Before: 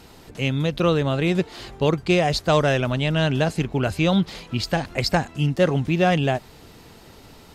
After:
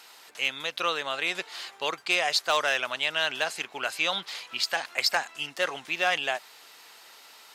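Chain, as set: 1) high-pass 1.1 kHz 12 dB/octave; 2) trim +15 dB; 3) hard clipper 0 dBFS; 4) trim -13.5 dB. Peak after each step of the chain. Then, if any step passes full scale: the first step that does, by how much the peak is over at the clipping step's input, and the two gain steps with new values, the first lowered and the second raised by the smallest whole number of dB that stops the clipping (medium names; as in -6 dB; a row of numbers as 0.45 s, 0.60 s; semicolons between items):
-8.5 dBFS, +6.5 dBFS, 0.0 dBFS, -13.5 dBFS; step 2, 6.5 dB; step 2 +8 dB, step 4 -6.5 dB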